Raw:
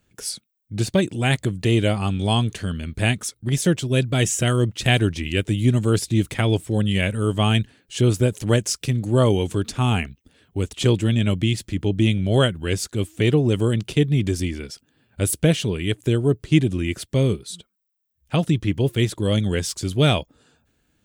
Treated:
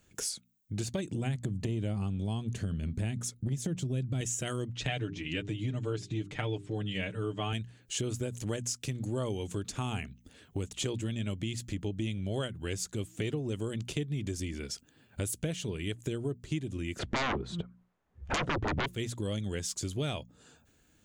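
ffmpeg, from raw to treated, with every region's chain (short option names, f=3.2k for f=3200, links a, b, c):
-filter_complex "[0:a]asettb=1/sr,asplit=3[a][b][c];[a]atrim=end=1.114[d];[b]atrim=start=1.11:end=4.21,asetpts=PTS-STARTPTS,afade=t=in:d=0.004:c=qsin,afade=t=out:st=3.096:d=0.004:c=qsin,equalizer=f=140:w=0.39:g=13,acompressor=threshold=-13dB:ratio=2.5:attack=3.2:release=140:knee=1:detection=peak[e];[c]atrim=start=4.206[f];[d][e]acrossfade=d=0.004:c1=hsin:c2=qsin[g];[g][f]acrossfade=d=0.004:c1=qsin:c2=hsin,asettb=1/sr,asplit=3[h][i][j];[h]atrim=end=4.734[k];[i]atrim=start=4.73:end=7.53,asetpts=PTS-STARTPTS,afade=t=in:d=0.004:c=qsin,afade=t=out:st=2.796:d=0.004:c=qsin,lowpass=4.1k,bandreject=f=50:t=h:w=6,bandreject=f=100:t=h:w=6,bandreject=f=150:t=h:w=6,bandreject=f=200:t=h:w=6,bandreject=f=250:t=h:w=6,bandreject=f=300:t=h:w=6,bandreject=f=350:t=h:w=6,bandreject=f=400:t=h:w=6,aecho=1:1:6.7:0.68,atrim=end_sample=123480[l];[j]atrim=start=7.526[m];[k][l]acrossfade=d=0.004:c1=hsin:c2=qsin[n];[n][m]acrossfade=d=0.004:c1=qsin:c2=hsin,asettb=1/sr,asplit=3[o][p][q];[o]atrim=end=16.994[r];[p]atrim=start=16.99:end=18.86,asetpts=PTS-STARTPTS,afade=t=in:d=0.004:c=qsin,afade=t=out:st=1.866:d=0.004:c=qsin,lowpass=1.2k,aeval=exprs='0.335*sin(PI/2*8.91*val(0)/0.335)':c=same[s];[q]atrim=start=18.856[t];[r][s]acrossfade=d=0.004:c1=hsin:c2=qsin[u];[u][t]acrossfade=d=0.004:c1=qsin:c2=hsin,equalizer=f=6.8k:t=o:w=0.4:g=7,bandreject=f=60:t=h:w=6,bandreject=f=120:t=h:w=6,bandreject=f=180:t=h:w=6,bandreject=f=240:t=h:w=6,acompressor=threshold=-34dB:ratio=4"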